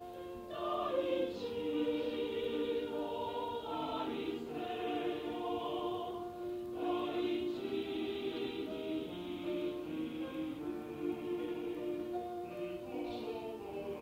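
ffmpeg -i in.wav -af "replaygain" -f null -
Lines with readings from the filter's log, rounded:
track_gain = +19.9 dB
track_peak = 0.048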